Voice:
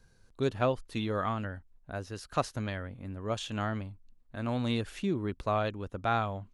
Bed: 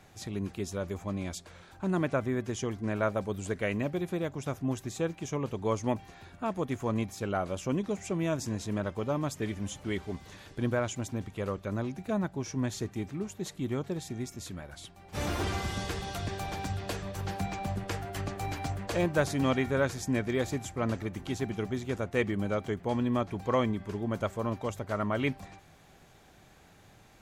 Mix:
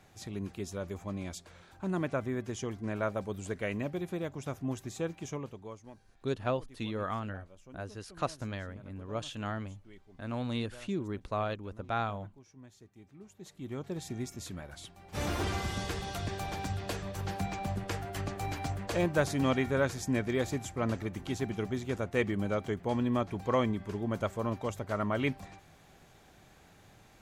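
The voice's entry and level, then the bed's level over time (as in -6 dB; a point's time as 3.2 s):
5.85 s, -3.5 dB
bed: 5.3 s -3.5 dB
5.91 s -22 dB
12.9 s -22 dB
14.06 s -1 dB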